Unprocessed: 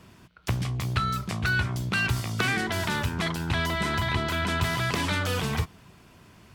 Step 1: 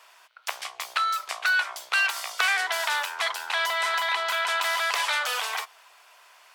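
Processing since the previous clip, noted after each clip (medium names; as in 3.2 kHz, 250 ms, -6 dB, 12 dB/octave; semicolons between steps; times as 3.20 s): inverse Chebyshev high-pass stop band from 260 Hz, stop band 50 dB; trim +4 dB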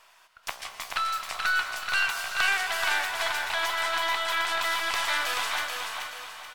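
partial rectifier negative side -3 dB; feedback delay 431 ms, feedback 37%, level -4.5 dB; on a send at -7 dB: reverberation RT60 3.2 s, pre-delay 103 ms; on the sum: trim -2 dB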